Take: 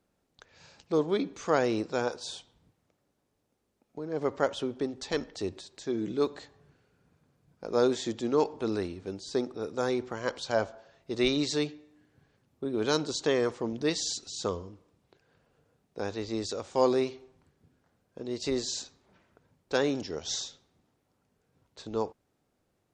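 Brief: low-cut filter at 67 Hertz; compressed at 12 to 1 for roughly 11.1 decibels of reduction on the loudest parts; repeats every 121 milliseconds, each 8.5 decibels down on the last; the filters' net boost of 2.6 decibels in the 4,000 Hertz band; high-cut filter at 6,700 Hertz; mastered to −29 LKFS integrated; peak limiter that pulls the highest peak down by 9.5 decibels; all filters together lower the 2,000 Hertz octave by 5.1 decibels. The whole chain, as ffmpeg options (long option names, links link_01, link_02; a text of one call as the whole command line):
ffmpeg -i in.wav -af "highpass=67,lowpass=6700,equalizer=frequency=2000:width_type=o:gain=-8.5,equalizer=frequency=4000:width_type=o:gain=5.5,acompressor=threshold=-31dB:ratio=12,alimiter=level_in=5dB:limit=-24dB:level=0:latency=1,volume=-5dB,aecho=1:1:121|242|363|484:0.376|0.143|0.0543|0.0206,volume=10.5dB" out.wav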